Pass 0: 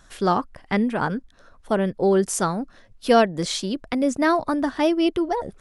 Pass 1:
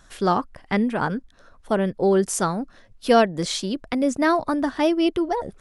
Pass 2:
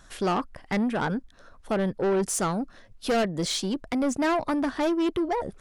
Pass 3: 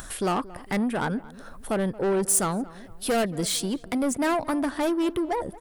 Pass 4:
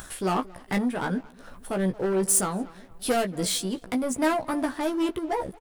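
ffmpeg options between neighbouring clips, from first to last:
-af anull
-af "asoftclip=type=tanh:threshold=0.0944"
-filter_complex "[0:a]aexciter=amount=3.4:drive=6.2:freq=8200,acompressor=mode=upward:threshold=0.0282:ratio=2.5,asplit=2[s0][s1];[s1]adelay=226,lowpass=f=1700:p=1,volume=0.119,asplit=2[s2][s3];[s3]adelay=226,lowpass=f=1700:p=1,volume=0.44,asplit=2[s4][s5];[s5]adelay=226,lowpass=f=1700:p=1,volume=0.44,asplit=2[s6][s7];[s7]adelay=226,lowpass=f=1700:p=1,volume=0.44[s8];[s0][s2][s4][s6][s8]amix=inputs=5:normalize=0"
-filter_complex "[0:a]aeval=exprs='sgn(val(0))*max(abs(val(0))-0.00335,0)':c=same,tremolo=f=2.6:d=0.33,asplit=2[s0][s1];[s1]adelay=16,volume=0.531[s2];[s0][s2]amix=inputs=2:normalize=0"

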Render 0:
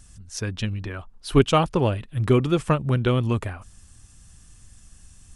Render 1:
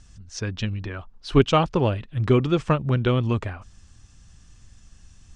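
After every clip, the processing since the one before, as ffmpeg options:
-af "lowpass=f=6500:w=0.5412,lowpass=f=6500:w=1.3066"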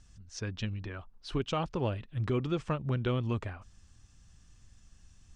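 -af "alimiter=limit=0.211:level=0:latency=1:release=144,volume=0.398"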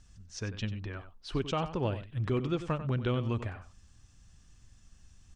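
-filter_complex "[0:a]asplit=2[s0][s1];[s1]adelay=93.29,volume=0.251,highshelf=f=4000:g=-2.1[s2];[s0][s2]amix=inputs=2:normalize=0"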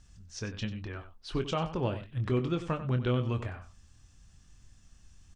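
-filter_complex "[0:a]asplit=2[s0][s1];[s1]adelay=24,volume=0.355[s2];[s0][s2]amix=inputs=2:normalize=0"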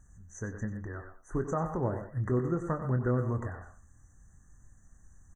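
-filter_complex "[0:a]asplit=2[s0][s1];[s1]adelay=120,highpass=300,lowpass=3400,asoftclip=type=hard:threshold=0.0447,volume=0.398[s2];[s0][s2]amix=inputs=2:normalize=0,afftfilt=real='re*(1-between(b*sr/4096,2000,5900))':imag='im*(1-between(b*sr/4096,2000,5900))':win_size=4096:overlap=0.75"

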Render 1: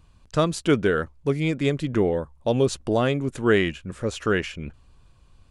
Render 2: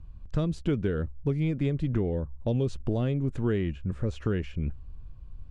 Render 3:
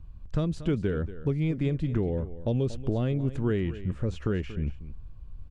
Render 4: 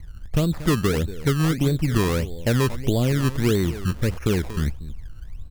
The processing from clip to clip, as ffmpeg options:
-filter_complex "[0:a]aemphasis=mode=reproduction:type=riaa,acrossover=split=640|2300[s0][s1][s2];[s0]acompressor=threshold=0.112:ratio=4[s3];[s1]acompressor=threshold=0.01:ratio=4[s4];[s2]acompressor=threshold=0.01:ratio=4[s5];[s3][s4][s5]amix=inputs=3:normalize=0,volume=0.531"
-af "aecho=1:1:234:0.188"
-af "acrusher=samples=21:mix=1:aa=0.000001:lfo=1:lforange=21:lforate=1.6,volume=2.11"

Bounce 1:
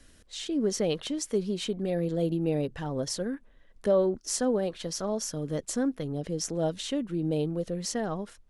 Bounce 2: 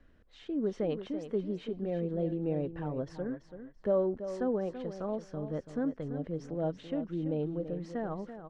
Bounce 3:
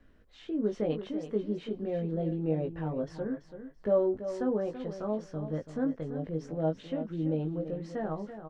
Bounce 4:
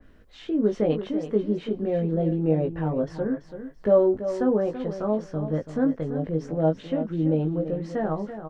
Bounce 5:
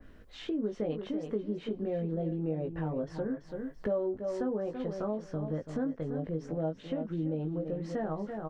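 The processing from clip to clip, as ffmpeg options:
-filter_complex "[0:a]lowpass=1700,asplit=2[s0][s1];[s1]aecho=0:1:334|668|1002:0.299|0.0597|0.0119[s2];[s0][s2]amix=inputs=2:normalize=0,volume=0.596"
-filter_complex "[0:a]asplit=2[s0][s1];[s1]adelay=19,volume=0.631[s2];[s0][s2]amix=inputs=2:normalize=0"
-af "adynamicequalizer=threshold=0.00224:dfrequency=2400:dqfactor=0.7:tfrequency=2400:tqfactor=0.7:attack=5:release=100:ratio=0.375:range=2:mode=cutabove:tftype=highshelf,volume=2.37"
-af "acompressor=threshold=0.0224:ratio=3"

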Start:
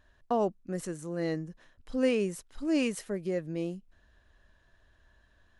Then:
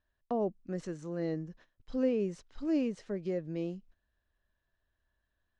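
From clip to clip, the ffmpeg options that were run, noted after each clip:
-filter_complex "[0:a]agate=range=0.178:threshold=0.002:ratio=16:detection=peak,lowpass=f=6200:w=0.5412,lowpass=f=6200:w=1.3066,acrossover=split=720[s0][s1];[s1]acompressor=threshold=0.00447:ratio=6[s2];[s0][s2]amix=inputs=2:normalize=0,volume=0.794"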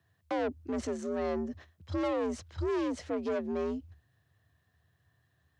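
-af "asoftclip=type=tanh:threshold=0.0141,afreqshift=69,volume=2.66"

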